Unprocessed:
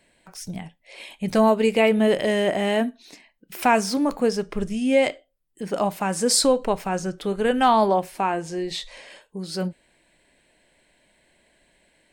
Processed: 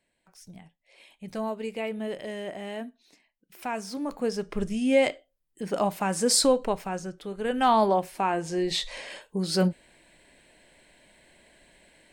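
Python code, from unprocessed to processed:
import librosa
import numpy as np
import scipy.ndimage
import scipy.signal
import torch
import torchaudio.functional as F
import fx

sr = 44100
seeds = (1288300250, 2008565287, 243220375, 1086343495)

y = fx.gain(x, sr, db=fx.line((3.71, -14.0), (4.6, -2.5), (6.53, -2.5), (7.3, -10.5), (7.72, -3.0), (8.23, -3.0), (8.91, 4.0)))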